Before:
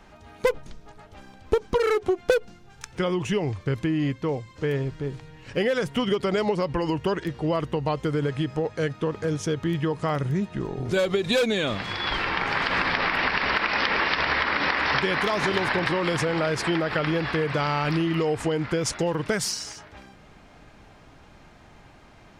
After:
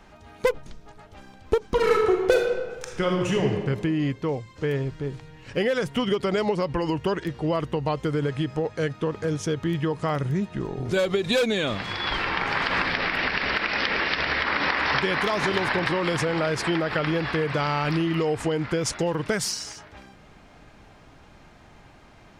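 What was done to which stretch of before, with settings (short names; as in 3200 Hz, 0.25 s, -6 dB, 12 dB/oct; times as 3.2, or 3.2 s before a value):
1.67–3.45 reverb throw, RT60 1.4 s, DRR 0.5 dB
12.85–14.45 bell 1000 Hz -5.5 dB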